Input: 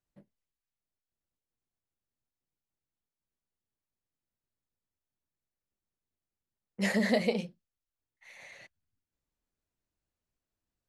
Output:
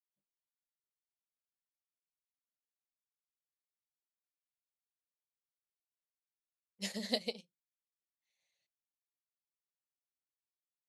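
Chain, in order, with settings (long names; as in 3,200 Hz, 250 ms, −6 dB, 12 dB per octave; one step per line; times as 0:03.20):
high shelf with overshoot 2,600 Hz +11 dB, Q 1.5
expander for the loud parts 2.5 to 1, over −42 dBFS
level −7.5 dB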